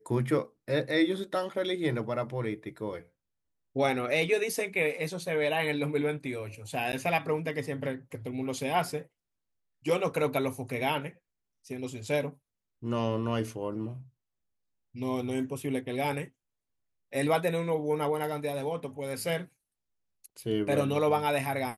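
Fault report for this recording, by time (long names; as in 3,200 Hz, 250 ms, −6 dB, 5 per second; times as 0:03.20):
0:06.92–0:06.93: drop-out 9.8 ms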